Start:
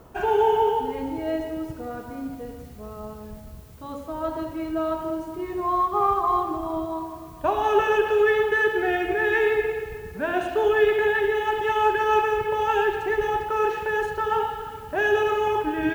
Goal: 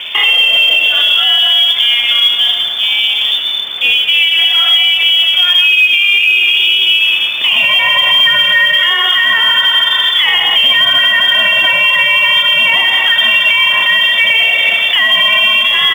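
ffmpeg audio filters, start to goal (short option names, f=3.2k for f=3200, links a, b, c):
-filter_complex "[0:a]asettb=1/sr,asplit=3[a][b][c];[a]atrim=end=3.914[d];[b]atrim=start=3.91:end=6.14,asetpts=PTS-STARTPTS,afade=t=in:d=0.004:c=qsin,afade=t=out:st=2.226:d=0.004:c=qsin,acrossover=split=150|360|2600[e][f][g][h];[e]acompressor=threshold=-51dB:ratio=4[i];[f]acompressor=threshold=-36dB:ratio=4[j];[g]acompressor=threshold=-31dB:ratio=4[k];[h]acompressor=threshold=-60dB:ratio=4[l];[i][j][k][l]amix=inputs=4:normalize=0[m];[c]atrim=start=6.136[n];[d][m]acrossfade=d=0.004:c1=hsin:c2=qsin[o];[o][n]acrossfade=d=0.004:c1=qsin:c2=hsin,highshelf=f=2.1k:g=10.5,lowpass=f=3.1k:t=q:w=0.5098,lowpass=f=3.1k:t=q:w=0.6013,lowpass=f=3.1k:t=q:w=0.9,lowpass=f=3.1k:t=q:w=2.563,afreqshift=-3600,aecho=1:1:81|162:0.266|0.0426,acompressor=threshold=-29dB:ratio=5,highpass=100,alimiter=level_in=26dB:limit=-1dB:release=50:level=0:latency=1,volume=-1dB" -ar 44100 -c:a adpcm_ima_wav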